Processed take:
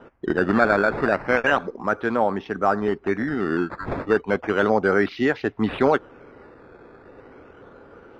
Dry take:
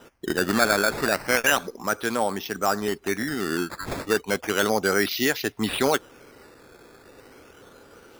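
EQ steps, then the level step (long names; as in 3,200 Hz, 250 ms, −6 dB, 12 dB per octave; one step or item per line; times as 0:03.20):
low-pass filter 1,600 Hz 12 dB per octave
+4.0 dB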